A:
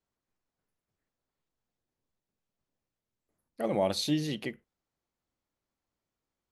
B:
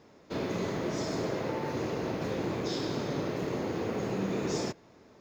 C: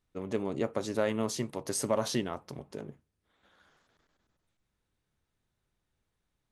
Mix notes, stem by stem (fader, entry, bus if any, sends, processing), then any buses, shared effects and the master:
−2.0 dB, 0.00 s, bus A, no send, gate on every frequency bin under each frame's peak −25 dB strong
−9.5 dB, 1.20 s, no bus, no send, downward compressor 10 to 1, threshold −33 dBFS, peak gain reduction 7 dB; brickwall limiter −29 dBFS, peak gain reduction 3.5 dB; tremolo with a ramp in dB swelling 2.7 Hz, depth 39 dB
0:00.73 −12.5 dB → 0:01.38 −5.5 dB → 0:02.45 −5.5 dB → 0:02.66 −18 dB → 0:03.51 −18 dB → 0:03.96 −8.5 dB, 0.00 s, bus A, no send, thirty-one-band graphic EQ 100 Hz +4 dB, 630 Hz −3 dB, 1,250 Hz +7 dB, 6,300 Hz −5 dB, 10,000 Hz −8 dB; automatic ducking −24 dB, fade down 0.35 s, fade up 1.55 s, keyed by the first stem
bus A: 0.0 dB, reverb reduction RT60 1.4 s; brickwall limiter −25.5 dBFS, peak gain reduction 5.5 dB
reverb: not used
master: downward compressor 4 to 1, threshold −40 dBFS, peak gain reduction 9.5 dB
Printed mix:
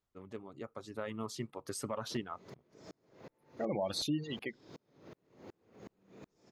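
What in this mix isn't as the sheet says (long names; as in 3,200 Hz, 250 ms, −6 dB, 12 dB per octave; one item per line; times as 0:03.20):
stem B: entry 1.20 s → 1.80 s
master: missing downward compressor 4 to 1, threshold −40 dBFS, peak gain reduction 9.5 dB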